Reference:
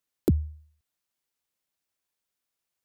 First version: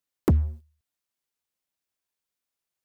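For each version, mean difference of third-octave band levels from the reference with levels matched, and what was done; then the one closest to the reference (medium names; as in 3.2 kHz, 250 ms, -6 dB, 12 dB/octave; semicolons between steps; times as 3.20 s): 7.0 dB: waveshaping leveller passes 2; in parallel at -7 dB: saturation -28.5 dBFS, distortion -6 dB; on the sum: trim -2 dB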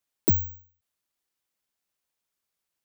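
1.5 dB: careless resampling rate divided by 2×, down none, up zero stuff; endings held to a fixed fall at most 140 dB/s; trim -2.5 dB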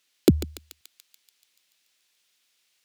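9.5 dB: frequency weighting D; on a send: thinning echo 144 ms, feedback 67%, high-pass 1.2 kHz, level -7.5 dB; on the sum: trim +8 dB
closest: second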